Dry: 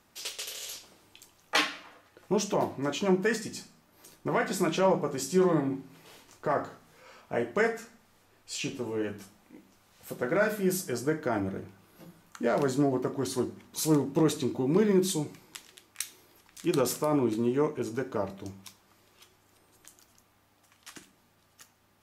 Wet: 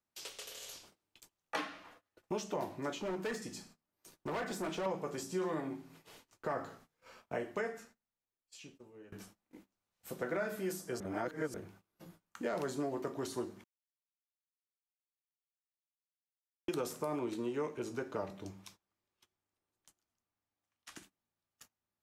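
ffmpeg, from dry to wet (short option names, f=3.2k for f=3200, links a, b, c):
-filter_complex "[0:a]asettb=1/sr,asplit=3[a][b][c];[a]atrim=end=2.994[d];[b]atrim=start=2.99:end=4.86,asetpts=PTS-STARTPTS,afade=t=in:d=0.004:c=qsin,afade=t=out:st=1.866:d=0.004:c=qsin,volume=27dB,asoftclip=hard,volume=-27dB[e];[c]atrim=start=4.856[f];[d][e]acrossfade=d=0.004:c1=hsin:c2=qsin[g];[g][f]acrossfade=d=0.004:c1=qsin:c2=hsin,asettb=1/sr,asplit=3[h][i][j];[h]atrim=end=17.194[k];[i]atrim=start=17.19:end=20.96,asetpts=PTS-STARTPTS,afade=t=in:d=0.004:c=qsin,afade=t=out:st=3.766:d=0.004:c=qsin,highshelf=f=11k:g=-8[l];[j]atrim=start=20.956[m];[k][l]acrossfade=d=0.004:c1=hsin:c2=qsin[n];[n][m]acrossfade=d=0.004:c1=qsin:c2=hsin,asplit=6[o][p][q][r][s][t];[o]atrim=end=9.12,asetpts=PTS-STARTPTS,afade=t=out:st=7.34:d=1.78:c=qua:silence=0.105925[u];[p]atrim=start=9.12:end=11.002,asetpts=PTS-STARTPTS,afade=t=in:d=0.004:c=hsin:silence=0.105925[v];[q]atrim=start=10.998:end=11.542,asetpts=PTS-STARTPTS,areverse[w];[r]atrim=start=11.538:end=13.64,asetpts=PTS-STARTPTS,afade=t=out:st=2.098:d=0.004:c=hsin[x];[s]atrim=start=13.64:end=16.68,asetpts=PTS-STARTPTS,volume=0[y];[t]atrim=start=16.68,asetpts=PTS-STARTPTS,afade=t=in:d=0.004:c=hsin[z];[u][v]concat=n=2:v=0:a=1[aa];[aa][w]acrossfade=d=0.004:c1=hsin:c2=hsin[ab];[x][y][z]concat=n=3:v=0:a=1[ac];[ab][ac]acrossfade=d=0.004:c1=hsin:c2=hsin,agate=range=-23dB:threshold=-53dB:ratio=16:detection=peak,acrossover=split=360|1500[ad][ae][af];[ad]acompressor=threshold=-40dB:ratio=4[ag];[ae]acompressor=threshold=-32dB:ratio=4[ah];[af]acompressor=threshold=-42dB:ratio=4[ai];[ag][ah][ai]amix=inputs=3:normalize=0,volume=-4dB"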